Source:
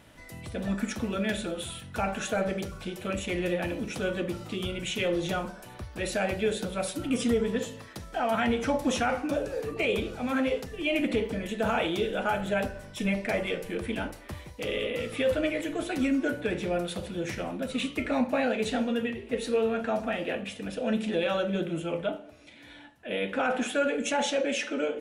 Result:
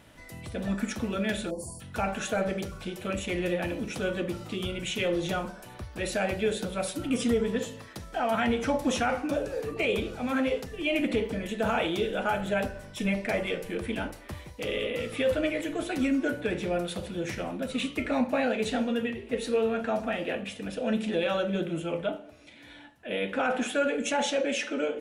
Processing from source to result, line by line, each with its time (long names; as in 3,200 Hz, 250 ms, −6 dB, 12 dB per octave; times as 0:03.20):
0:01.50–0:01.81: time-frequency box erased 1,100–4,300 Hz